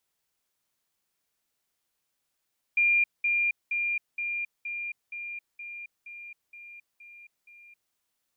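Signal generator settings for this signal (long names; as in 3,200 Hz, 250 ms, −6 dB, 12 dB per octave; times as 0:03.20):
level staircase 2,400 Hz −19.5 dBFS, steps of −3 dB, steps 11, 0.27 s 0.20 s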